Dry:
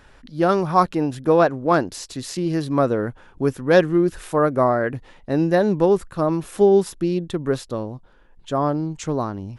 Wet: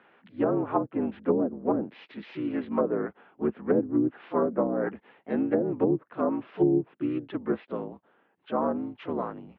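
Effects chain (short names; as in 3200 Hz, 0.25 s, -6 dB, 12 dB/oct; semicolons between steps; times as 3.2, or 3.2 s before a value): harmoniser -12 st -7 dB, -3 st -10 dB, +3 st -9 dB; mistuned SSB -51 Hz 260–3100 Hz; treble ducked by the level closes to 340 Hz, closed at -11 dBFS; gain -6.5 dB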